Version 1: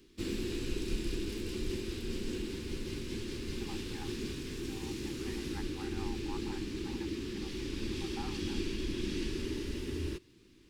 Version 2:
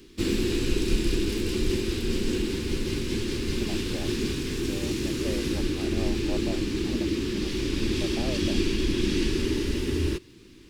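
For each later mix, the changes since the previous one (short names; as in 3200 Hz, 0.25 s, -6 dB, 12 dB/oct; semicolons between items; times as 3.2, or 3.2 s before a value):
speech: remove brick-wall FIR high-pass 760 Hz; background +10.5 dB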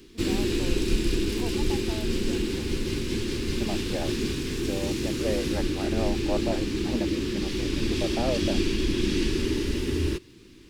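first voice: unmuted; second voice +8.0 dB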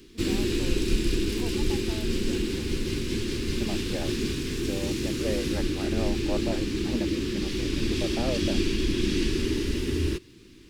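master: add bell 750 Hz -4.5 dB 1 oct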